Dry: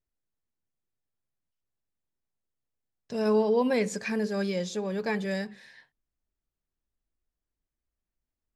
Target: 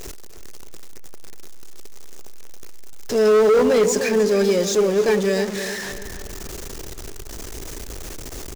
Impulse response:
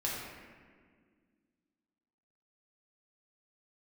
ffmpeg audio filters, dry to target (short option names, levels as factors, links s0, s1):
-filter_complex "[0:a]aeval=exprs='val(0)+0.5*0.0316*sgn(val(0))':c=same,equalizer=f=160:t=o:w=0.67:g=-3,equalizer=f=400:t=o:w=0.67:g=10,equalizer=f=6300:t=o:w=0.67:g=7,asplit=2[s0][s1];[s1]adelay=300,lowpass=f=3000:p=1,volume=0.316,asplit=2[s2][s3];[s3]adelay=300,lowpass=f=3000:p=1,volume=0.4,asplit=2[s4][s5];[s5]adelay=300,lowpass=f=3000:p=1,volume=0.4,asplit=2[s6][s7];[s7]adelay=300,lowpass=f=3000:p=1,volume=0.4[s8];[s0][s2][s4][s6][s8]amix=inputs=5:normalize=0,asoftclip=type=hard:threshold=0.168,volume=1.5"